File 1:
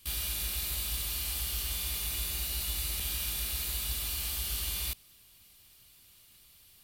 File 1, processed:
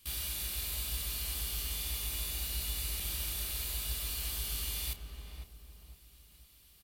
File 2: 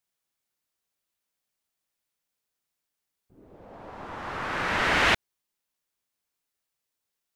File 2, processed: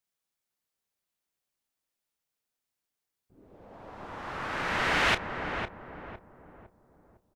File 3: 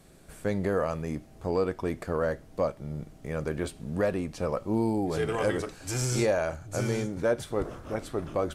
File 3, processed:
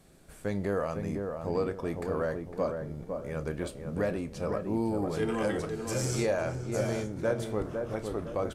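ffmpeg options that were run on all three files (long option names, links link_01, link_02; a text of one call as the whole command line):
ffmpeg -i in.wav -filter_complex "[0:a]asplit=2[link_01][link_02];[link_02]adelay=30,volume=-13.5dB[link_03];[link_01][link_03]amix=inputs=2:normalize=0,asplit=2[link_04][link_05];[link_05]adelay=506,lowpass=frequency=1000:poles=1,volume=-4dB,asplit=2[link_06][link_07];[link_07]adelay=506,lowpass=frequency=1000:poles=1,volume=0.43,asplit=2[link_08][link_09];[link_09]adelay=506,lowpass=frequency=1000:poles=1,volume=0.43,asplit=2[link_10][link_11];[link_11]adelay=506,lowpass=frequency=1000:poles=1,volume=0.43,asplit=2[link_12][link_13];[link_13]adelay=506,lowpass=frequency=1000:poles=1,volume=0.43[link_14];[link_06][link_08][link_10][link_12][link_14]amix=inputs=5:normalize=0[link_15];[link_04][link_15]amix=inputs=2:normalize=0,volume=-3.5dB" out.wav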